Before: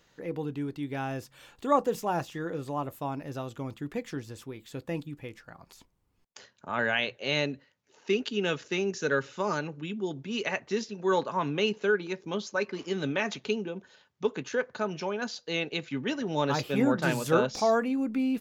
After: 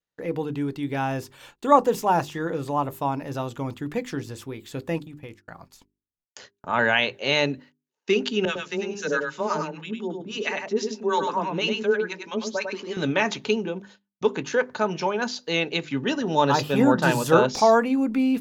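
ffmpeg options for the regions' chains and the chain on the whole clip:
-filter_complex "[0:a]asettb=1/sr,asplit=3[a][b][c];[a]atrim=end=4.984[d];[b]atrim=start=4.98:end=5.43,asetpts=PTS-STARTPTS,afade=t=in:d=0.004:c=qsin,afade=t=out:st=0.446:d=0.004:c=qsin,agate=range=-33dB:threshold=-45dB:ratio=3:release=100:detection=peak,acompressor=threshold=-40dB:ratio=6:attack=3.2:release=140:knee=1:detection=peak[e];[c]atrim=start=5.426[f];[d][e]acrossfade=d=0.004:c1=hsin:c2=qsin[g];[g][f]acrossfade=d=0.004:c1=qsin:c2=hsin,asettb=1/sr,asplit=3[h][i][j];[h]atrim=end=8.454[k];[i]atrim=start=8.45:end=12.97,asetpts=PTS-STARTPTS,afade=t=in:d=0.004:c=qsin,afade=t=out:st=4.516:d=0.004:c=qsin,acrossover=split=830[l][m];[l]aeval=exprs='val(0)*(1-1/2+1/2*cos(2*PI*6.1*n/s))':c=same[n];[m]aeval=exprs='val(0)*(1-1/2-1/2*cos(2*PI*6.1*n/s))':c=same[o];[n][o]amix=inputs=2:normalize=0,afreqshift=15,aecho=1:1:100:0.562,atrim=end_sample=199332[p];[j]atrim=start=12.966[q];[k][p]acrossfade=d=0.004:c1=hsin:c2=qsin[r];[r][q]acrossfade=d=0.004:c1=qsin:c2=hsin,asettb=1/sr,asplit=3[s][t][u];[s]atrim=end=15.944[v];[t]atrim=start=15.94:end=17.42,asetpts=PTS-STARTPTS,afade=t=in:d=0.004:c=qsin,afade=t=out:st=1.476:d=0.004:c=qsin,deesser=0.65,bandreject=f=2.2k:w=6.9[w];[u]atrim=start=17.416[x];[v][w]acrossfade=d=0.004:c1=hsin:c2=qsin[y];[y][x]acrossfade=d=0.004:c1=qsin:c2=hsin,agate=range=-33dB:threshold=-53dB:ratio=16:detection=peak,bandreject=f=50:t=h:w=6,bandreject=f=100:t=h:w=6,bandreject=f=150:t=h:w=6,bandreject=f=200:t=h:w=6,bandreject=f=250:t=h:w=6,bandreject=f=300:t=h:w=6,bandreject=f=350:t=h:w=6,bandreject=f=400:t=h:w=6,adynamicequalizer=threshold=0.00398:dfrequency=920:dqfactor=5.1:tfrequency=920:tqfactor=5.1:attack=5:release=100:ratio=0.375:range=3:mode=boostabove:tftype=bell,volume=6.5dB"

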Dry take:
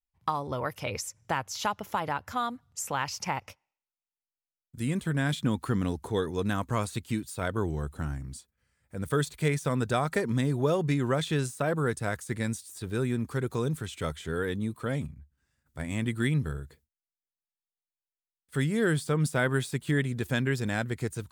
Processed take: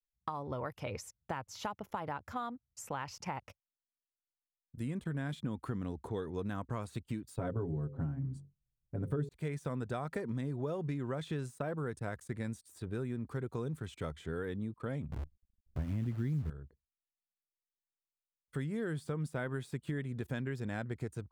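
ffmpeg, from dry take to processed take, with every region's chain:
-filter_complex "[0:a]asettb=1/sr,asplit=3[a][b][c];[a]atrim=end=7.384[d];[b]atrim=start=7.38:end=9.29,asetpts=PTS-STARTPTS,afade=t=in:d=0.004:c=qsin,afade=t=out:st=1.906:d=0.004:c=qsin,tiltshelf=f=940:g=8,aecho=1:1:7.3:0.83,atrim=end_sample=84231,bandreject=f=46.73:t=h:w=4,bandreject=f=93.46:t=h:w=4,bandreject=f=140.19:t=h:w=4,bandreject=f=186.92:t=h:w=4,bandreject=f=233.65:t=h:w=4,bandreject=f=280.38:t=h:w=4,bandreject=f=327.11:t=h:w=4,bandreject=f=373.84:t=h:w=4,bandreject=f=420.57:t=h:w=4,bandreject=f=467.3:t=h:w=4,bandreject=f=514.03:t=h:w=4[e];[c]atrim=start=9.286[f];[d][e]acrossfade=d=0.004:c1=hsin:c2=qsin[g];[g][f]acrossfade=d=0.004:c1=qsin:c2=hsin,asettb=1/sr,asplit=3[h][i][j];[h]atrim=end=15.124[k];[i]atrim=start=15.12:end=16.5,asetpts=PTS-STARTPTS,afade=t=in:d=0.004:c=qsin,afade=t=out:st=1.376:d=0.004:c=qsin,aemphasis=mode=reproduction:type=riaa,acrusher=bits=7:dc=4:mix=0:aa=0.000001[l];[j]atrim=start=16.496[m];[k][l]acrossfade=d=0.004:c1=hsin:c2=qsin[n];[n][m]acrossfade=d=0.004:c1=qsin:c2=hsin,anlmdn=0.01,highshelf=f=2.3k:g=-10,acompressor=threshold=-31dB:ratio=4,volume=-3.5dB"

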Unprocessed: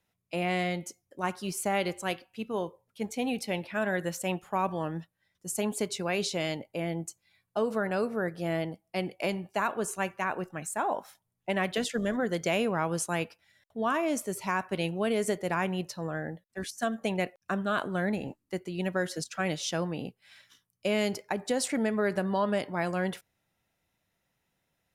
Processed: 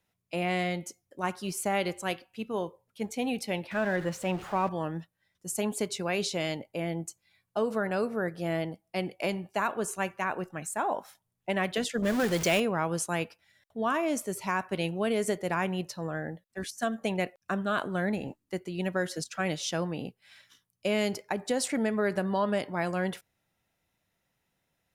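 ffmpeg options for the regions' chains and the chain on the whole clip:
-filter_complex "[0:a]asettb=1/sr,asplit=3[a][b][c];[a]atrim=end=3.714[d];[b]atrim=start=3.71:end=4.69,asetpts=PTS-STARTPTS,afade=t=in:d=0.004:c=qsin,afade=t=out:st=0.976:d=0.004:c=qsin,aeval=exprs='val(0)+0.5*0.0141*sgn(val(0))':c=same,lowpass=f=2.9k:p=1[e];[c]atrim=start=4.686[f];[d][e]acrossfade=d=0.004:c1=hsin:c2=qsin[g];[g][f]acrossfade=d=0.004:c1=qsin:c2=hsin,asettb=1/sr,asplit=3[h][i][j];[h]atrim=end=12.024[k];[i]atrim=start=12.02:end=12.6,asetpts=PTS-STARTPTS,afade=t=in:d=0.004:c=qsin,afade=t=out:st=0.576:d=0.004:c=qsin,aeval=exprs='val(0)+0.5*0.0282*sgn(val(0))':c=same,adynamicequalizer=threshold=0.00891:dfrequency=2100:dqfactor=0.7:tfrequency=2100:tqfactor=0.7:attack=5:release=100:ratio=0.375:range=2:mode=boostabove:tftype=highshelf[l];[j]atrim=start=12.596[m];[k][l]acrossfade=d=0.004:c1=hsin:c2=qsin[n];[n][m]acrossfade=d=0.004:c1=qsin:c2=hsin"

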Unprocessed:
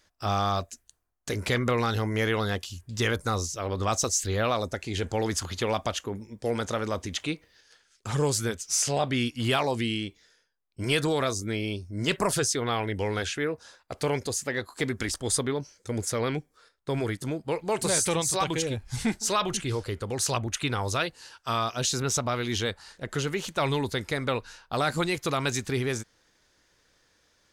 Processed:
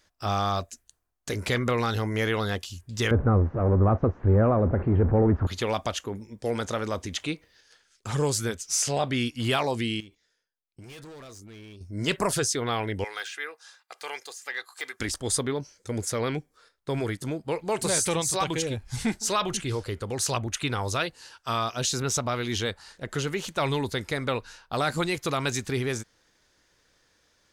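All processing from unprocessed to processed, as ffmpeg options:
-filter_complex "[0:a]asettb=1/sr,asplit=3[a][b][c];[a]atrim=end=3.114[d];[b]atrim=start=3.11:end=5.47,asetpts=PTS-STARTPTS,afade=t=in:d=0.004:c=qsin,afade=t=out:st=2.356:d=0.004:c=qsin,aeval=exprs='val(0)+0.5*0.0422*sgn(val(0))':c=same,lowpass=f=1.6k:w=0.5412,lowpass=f=1.6k:w=1.3066,tiltshelf=f=730:g=7.5[e];[c]atrim=start=5.466[f];[d][e]acrossfade=d=0.004:c1=hsin:c2=qsin[g];[g][f]acrossfade=d=0.004:c1=qsin:c2=hsin,asettb=1/sr,asplit=3[h][i][j];[h]atrim=end=10.004[k];[i]atrim=start=10:end=11.81,asetpts=PTS-STARTPTS,afade=t=in:d=0.004:c=qsin,afade=t=out:st=1.806:d=0.004:c=qsin,agate=range=-11dB:threshold=-54dB:ratio=16:release=100:detection=peak,asoftclip=type=hard:threshold=-28dB,acompressor=threshold=-43dB:ratio=16:attack=3.2:release=140:knee=1:detection=peak[l];[j]atrim=start=11.806[m];[k][l]acrossfade=d=0.004:c1=hsin:c2=qsin[n];[n][m]acrossfade=d=0.004:c1=qsin:c2=hsin,asettb=1/sr,asplit=3[o][p][q];[o]atrim=end=13.044[r];[p]atrim=start=13.04:end=15,asetpts=PTS-STARTPTS,afade=t=in:d=0.004:c=qsin,afade=t=out:st=1.956:d=0.004:c=qsin,highpass=1.1k,aecho=1:1:2.5:0.38,atrim=end_sample=86436,deesser=0.9[s];[q]atrim=start=14.996[t];[r][s]acrossfade=d=0.004:c1=hsin:c2=qsin[u];[u][t]acrossfade=d=0.004:c1=qsin:c2=hsin"

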